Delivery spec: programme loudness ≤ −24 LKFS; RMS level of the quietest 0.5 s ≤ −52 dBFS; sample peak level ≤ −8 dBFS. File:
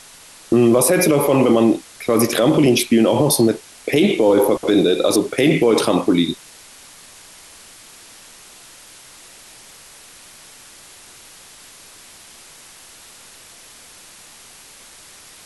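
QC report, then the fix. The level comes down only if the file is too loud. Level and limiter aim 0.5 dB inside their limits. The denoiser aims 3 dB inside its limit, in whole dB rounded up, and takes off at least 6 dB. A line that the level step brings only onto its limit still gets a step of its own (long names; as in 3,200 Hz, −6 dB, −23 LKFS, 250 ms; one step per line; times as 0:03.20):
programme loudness −16.0 LKFS: out of spec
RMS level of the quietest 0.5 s −43 dBFS: out of spec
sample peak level −5.5 dBFS: out of spec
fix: broadband denoise 6 dB, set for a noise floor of −43 dBFS
level −8.5 dB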